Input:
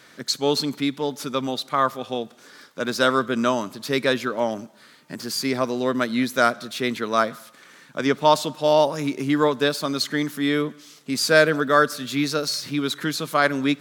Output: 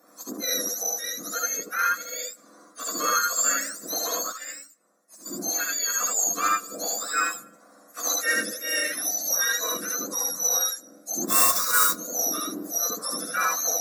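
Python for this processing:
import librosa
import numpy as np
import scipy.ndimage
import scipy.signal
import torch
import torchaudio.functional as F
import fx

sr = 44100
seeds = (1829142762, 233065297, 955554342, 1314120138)

p1 = fx.octave_mirror(x, sr, pivot_hz=1300.0)
p2 = 10.0 ** (-10.5 / 20.0) * np.tanh(p1 / 10.0 ** (-10.5 / 20.0))
p3 = scipy.signal.sosfilt(scipy.signal.butter(2, 430.0, 'highpass', fs=sr, output='sos'), p2)
p4 = fx.sample_hold(p3, sr, seeds[0], rate_hz=11000.0, jitter_pct=20, at=(11.28, 11.9))
p5 = fx.high_shelf(p4, sr, hz=4700.0, db=10.5)
p6 = fx.fixed_phaser(p5, sr, hz=600.0, stages=8)
p7 = p6 + fx.room_early_taps(p6, sr, ms=(69, 79), db=(-3.5, -3.5), dry=0)
p8 = fx.upward_expand(p7, sr, threshold_db=-39.0, expansion=1.5, at=(4.31, 5.25), fade=0.02)
y = F.gain(torch.from_numpy(p8), -2.5).numpy()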